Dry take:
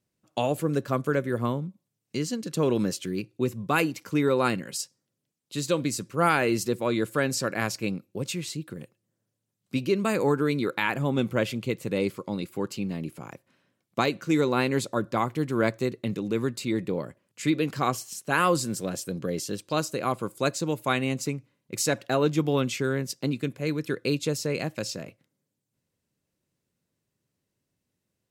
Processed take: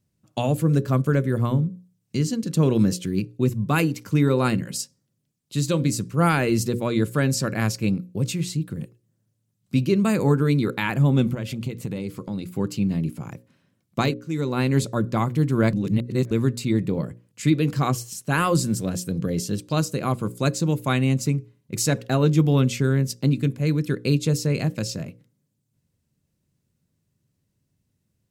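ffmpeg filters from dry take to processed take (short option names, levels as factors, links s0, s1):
-filter_complex "[0:a]asettb=1/sr,asplit=3[s0][s1][s2];[s0]atrim=end=11.344[s3];[s1]atrim=start=11.34:end=12.47,asetpts=PTS-STARTPTS,afade=t=in:d=0.004:c=qsin,afade=t=out:st=1.126:d=0.004:c=qsin,acompressor=threshold=0.0282:ratio=4:attack=3.2:release=140:knee=1:detection=peak[s4];[s2]atrim=start=12.466[s5];[s3][s4]acrossfade=d=0.004:c1=hsin:c2=qsin[s6];[s6][s5]acrossfade=d=0.004:c1=qsin:c2=hsin,asplit=4[s7][s8][s9][s10];[s7]atrim=end=14.14,asetpts=PTS-STARTPTS,afade=t=out:st=14.136:d=0.004:c=hsin:silence=0.105925[s11];[s8]atrim=start=14.14:end=15.732,asetpts=PTS-STARTPTS,afade=t=in:d=0.63:silence=0.105925[s12];[s9]atrim=start=15.728:end=16.312,asetpts=PTS-STARTPTS,areverse[s13];[s10]atrim=start=16.308[s14];[s11][s12]concat=n=2:v=0:a=1[s15];[s15][s13]acrossfade=d=0.004:c1=hsin:c2=hsin[s16];[s16][s14]acrossfade=d=0.004:c1=hsin:c2=hsin,bass=f=250:g=13,treble=f=4000:g=3,bandreject=f=60:t=h:w=6,bandreject=f=120:t=h:w=6,bandreject=f=180:t=h:w=6,bandreject=f=240:t=h:w=6,bandreject=f=300:t=h:w=6,bandreject=f=360:t=h:w=6,bandreject=f=420:t=h:w=6,bandreject=f=480:t=h:w=6,bandreject=f=540:t=h:w=6"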